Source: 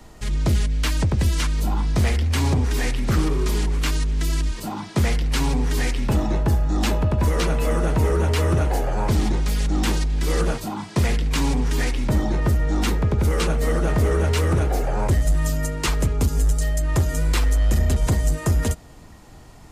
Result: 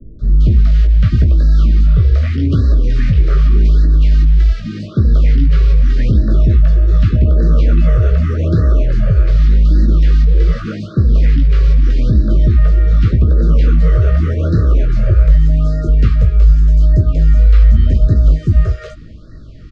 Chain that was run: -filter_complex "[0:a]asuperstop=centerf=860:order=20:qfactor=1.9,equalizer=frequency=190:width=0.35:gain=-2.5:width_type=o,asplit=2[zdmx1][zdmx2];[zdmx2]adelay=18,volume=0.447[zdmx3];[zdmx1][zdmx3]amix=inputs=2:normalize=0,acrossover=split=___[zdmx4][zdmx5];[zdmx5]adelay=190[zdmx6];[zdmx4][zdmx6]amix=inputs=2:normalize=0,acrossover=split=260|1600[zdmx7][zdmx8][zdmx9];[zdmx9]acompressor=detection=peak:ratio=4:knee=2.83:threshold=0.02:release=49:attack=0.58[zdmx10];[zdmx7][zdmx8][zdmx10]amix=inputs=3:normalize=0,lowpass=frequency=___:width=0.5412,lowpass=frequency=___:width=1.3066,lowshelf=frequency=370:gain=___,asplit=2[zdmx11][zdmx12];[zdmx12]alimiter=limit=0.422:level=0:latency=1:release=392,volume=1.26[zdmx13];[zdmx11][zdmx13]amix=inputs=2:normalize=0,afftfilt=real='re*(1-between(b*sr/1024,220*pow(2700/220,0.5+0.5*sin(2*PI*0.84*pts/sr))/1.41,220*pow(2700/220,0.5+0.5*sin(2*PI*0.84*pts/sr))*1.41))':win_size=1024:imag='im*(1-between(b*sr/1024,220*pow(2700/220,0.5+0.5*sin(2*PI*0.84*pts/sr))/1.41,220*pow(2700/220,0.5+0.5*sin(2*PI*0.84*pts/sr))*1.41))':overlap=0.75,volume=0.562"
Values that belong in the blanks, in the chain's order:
470, 4800, 4800, 9.5